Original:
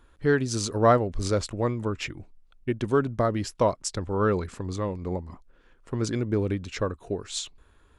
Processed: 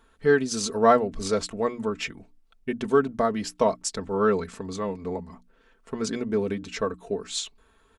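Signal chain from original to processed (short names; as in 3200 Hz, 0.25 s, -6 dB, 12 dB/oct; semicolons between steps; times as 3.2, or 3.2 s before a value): low shelf 85 Hz -10 dB; notches 60/120/180/240/300 Hz; comb 4.5 ms, depth 67%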